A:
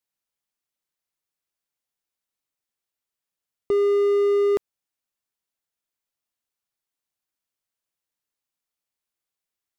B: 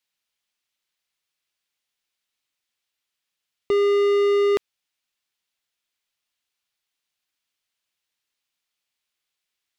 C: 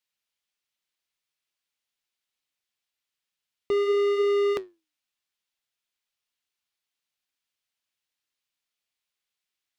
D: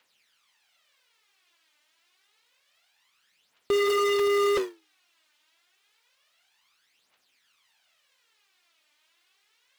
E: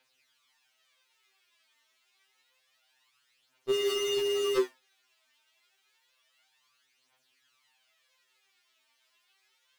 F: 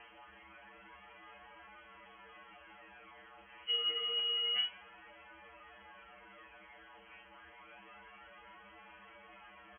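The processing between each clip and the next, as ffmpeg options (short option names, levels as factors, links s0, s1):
-af "equalizer=f=3100:w=0.57:g=11"
-af "flanger=delay=7.1:depth=5.8:regen=-77:speed=0.69:shape=triangular"
-filter_complex "[0:a]acrusher=bits=4:mode=log:mix=0:aa=0.000001,aphaser=in_gain=1:out_gain=1:delay=3.4:decay=0.64:speed=0.28:type=triangular,asplit=2[s0][s1];[s1]highpass=f=720:p=1,volume=35.5,asoftclip=type=tanh:threshold=0.224[s2];[s0][s2]amix=inputs=2:normalize=0,lowpass=f=2500:p=1,volume=0.501,volume=0.631"
-af "afftfilt=real='re*2.45*eq(mod(b,6),0)':imag='im*2.45*eq(mod(b,6),0)':win_size=2048:overlap=0.75"
-filter_complex "[0:a]aeval=exprs='val(0)+0.5*0.0112*sgn(val(0))':c=same,asplit=2[s0][s1];[s1]adelay=40,volume=0.447[s2];[s0][s2]amix=inputs=2:normalize=0,lowpass=f=2800:t=q:w=0.5098,lowpass=f=2800:t=q:w=0.6013,lowpass=f=2800:t=q:w=0.9,lowpass=f=2800:t=q:w=2.563,afreqshift=-3300,volume=0.398"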